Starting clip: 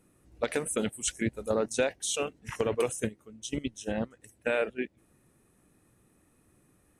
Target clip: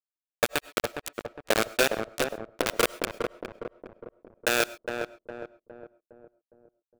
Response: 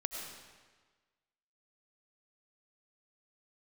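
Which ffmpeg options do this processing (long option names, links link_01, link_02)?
-filter_complex "[0:a]highpass=340,highshelf=frequency=2100:gain=-4.5,bandreject=frequency=50:width_type=h:width=6,bandreject=frequency=100:width_type=h:width=6,bandreject=frequency=150:width_type=h:width=6,bandreject=frequency=200:width_type=h:width=6,bandreject=frequency=250:width_type=h:width=6,bandreject=frequency=300:width_type=h:width=6,bandreject=frequency=350:width_type=h:width=6,bandreject=frequency=400:width_type=h:width=6,bandreject=frequency=450:width_type=h:width=6,acrusher=bits=3:mix=0:aa=0.000001,asplit=2[link_01][link_02];[link_02]adelay=410,lowpass=frequency=990:poles=1,volume=-4dB,asplit=2[link_03][link_04];[link_04]adelay=410,lowpass=frequency=990:poles=1,volume=0.53,asplit=2[link_05][link_06];[link_06]adelay=410,lowpass=frequency=990:poles=1,volume=0.53,asplit=2[link_07][link_08];[link_08]adelay=410,lowpass=frequency=990:poles=1,volume=0.53,asplit=2[link_09][link_10];[link_10]adelay=410,lowpass=frequency=990:poles=1,volume=0.53,asplit=2[link_11][link_12];[link_12]adelay=410,lowpass=frequency=990:poles=1,volume=0.53,asplit=2[link_13][link_14];[link_14]adelay=410,lowpass=frequency=990:poles=1,volume=0.53[link_15];[link_01][link_03][link_05][link_07][link_09][link_11][link_13][link_15]amix=inputs=8:normalize=0,asplit=2[link_16][link_17];[1:a]atrim=start_sample=2205,atrim=end_sample=6174[link_18];[link_17][link_18]afir=irnorm=-1:irlink=0,volume=-12dB[link_19];[link_16][link_19]amix=inputs=2:normalize=0,volume=3dB"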